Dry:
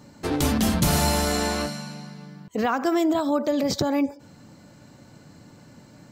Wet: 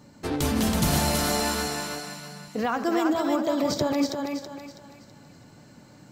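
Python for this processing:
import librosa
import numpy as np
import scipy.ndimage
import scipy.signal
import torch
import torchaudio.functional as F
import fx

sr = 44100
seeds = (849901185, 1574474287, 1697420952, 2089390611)

y = fx.reverse_delay(x, sr, ms=129, wet_db=-9.5)
y = fx.echo_thinned(y, sr, ms=326, feedback_pct=39, hz=380.0, wet_db=-3)
y = F.gain(torch.from_numpy(y), -3.0).numpy()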